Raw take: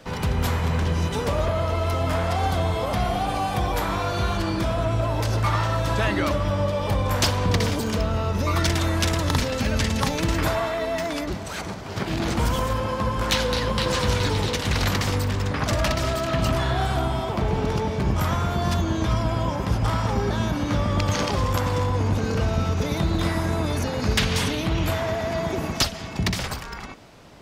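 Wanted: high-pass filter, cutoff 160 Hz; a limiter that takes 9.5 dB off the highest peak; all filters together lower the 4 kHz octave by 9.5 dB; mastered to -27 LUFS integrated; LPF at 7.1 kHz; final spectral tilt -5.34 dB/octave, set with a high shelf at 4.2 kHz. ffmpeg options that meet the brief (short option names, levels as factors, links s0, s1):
-af "highpass=160,lowpass=7100,equalizer=f=4000:t=o:g=-7,highshelf=f=4200:g=-9,volume=1.41,alimiter=limit=0.126:level=0:latency=1"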